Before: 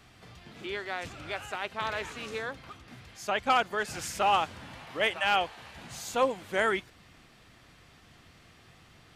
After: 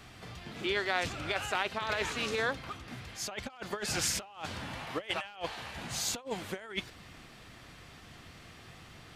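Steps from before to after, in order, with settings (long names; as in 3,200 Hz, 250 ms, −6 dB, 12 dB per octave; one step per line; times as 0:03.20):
dynamic equaliser 4,400 Hz, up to +4 dB, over −48 dBFS, Q 1.2
compressor whose output falls as the input rises −34 dBFS, ratio −0.5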